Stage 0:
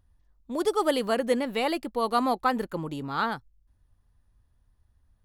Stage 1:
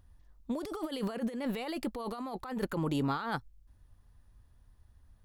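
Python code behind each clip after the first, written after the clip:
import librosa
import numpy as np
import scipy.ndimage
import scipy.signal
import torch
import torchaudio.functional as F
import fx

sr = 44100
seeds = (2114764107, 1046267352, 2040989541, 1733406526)

y = fx.over_compress(x, sr, threshold_db=-34.0, ratio=-1.0)
y = y * 10.0 ** (-1.5 / 20.0)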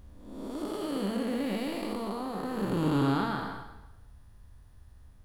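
y = fx.spec_blur(x, sr, span_ms=397.0)
y = fx.rev_plate(y, sr, seeds[0], rt60_s=1.0, hf_ratio=0.9, predelay_ms=0, drr_db=5.5)
y = y * 10.0 ** (8.0 / 20.0)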